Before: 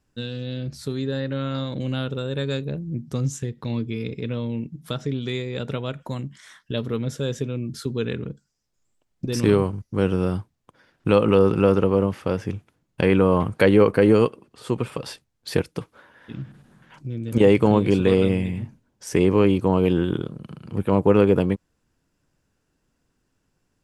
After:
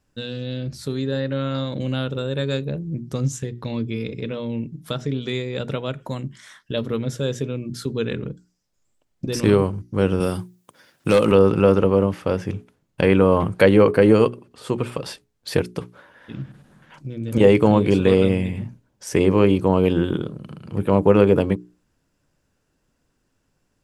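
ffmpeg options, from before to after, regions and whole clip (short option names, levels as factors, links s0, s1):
-filter_complex "[0:a]asettb=1/sr,asplit=3[s0][s1][s2];[s0]atrim=end=10.204[s3];[s1]atrim=start=10.2:end=11.32,asetpts=PTS-STARTPTS,afade=t=in:d=0.004:c=qsin,afade=t=out:st=1.116:d=0.004:c=qsin,highpass=100,aemphasis=mode=production:type=75kf,asoftclip=type=hard:threshold=0.266[s4];[s2]atrim=start=11.316[s5];[s3][s4]acrossfade=d=0.004:c1=hsin:c2=qsin[s6];[s6][s5]acrossfade=d=0.004:c1=qsin:c2=hsin,equalizer=f=570:w=6.3:g=3,bandreject=f=60:t=h:w=6,bandreject=f=120:t=h:w=6,bandreject=f=180:t=h:w=6,bandreject=f=240:t=h:w=6,bandreject=f=300:t=h:w=6,bandreject=f=360:t=h:w=6,bandreject=f=420:t=h:w=6,volume=1.26"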